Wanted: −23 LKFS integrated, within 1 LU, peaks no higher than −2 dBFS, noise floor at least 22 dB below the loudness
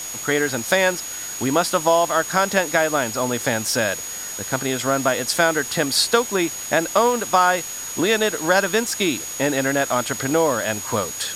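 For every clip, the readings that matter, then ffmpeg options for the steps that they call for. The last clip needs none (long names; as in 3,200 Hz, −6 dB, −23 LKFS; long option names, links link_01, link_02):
interfering tone 6,700 Hz; level of the tone −30 dBFS; background noise floor −31 dBFS; target noise floor −42 dBFS; integrated loudness −20.0 LKFS; sample peak −3.5 dBFS; target loudness −23.0 LKFS
→ -af "bandreject=frequency=6700:width=30"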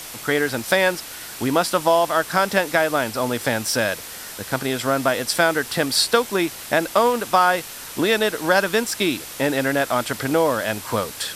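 interfering tone none found; background noise floor −36 dBFS; target noise floor −43 dBFS
→ -af "afftdn=noise_reduction=7:noise_floor=-36"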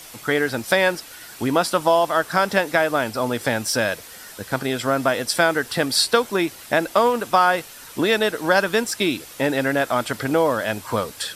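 background noise floor −41 dBFS; target noise floor −43 dBFS
→ -af "afftdn=noise_reduction=6:noise_floor=-41"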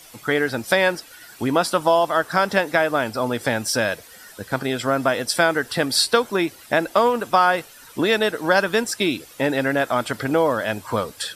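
background noise floor −46 dBFS; integrated loudness −21.0 LKFS; sample peak −4.0 dBFS; target loudness −23.0 LKFS
→ -af "volume=-2dB"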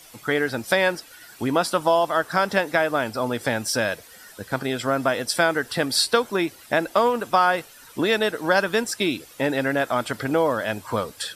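integrated loudness −23.0 LKFS; sample peak −6.0 dBFS; background noise floor −48 dBFS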